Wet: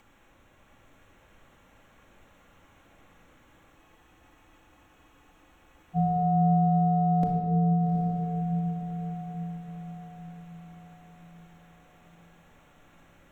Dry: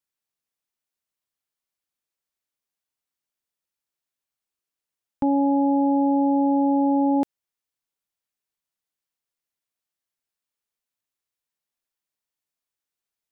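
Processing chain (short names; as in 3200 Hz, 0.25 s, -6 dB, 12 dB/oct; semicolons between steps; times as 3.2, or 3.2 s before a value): Wiener smoothing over 9 samples; HPF 45 Hz; tilt -1.5 dB/oct; limiter -23.5 dBFS, peak gain reduction 11 dB; upward compressor, threshold -44 dBFS; frequency shift -110 Hz; diffused feedback echo 0.78 s, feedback 45%, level -5 dB; shoebox room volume 2600 m³, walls mixed, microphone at 2.3 m; spectral freeze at 3.78, 2.18 s; gain +4 dB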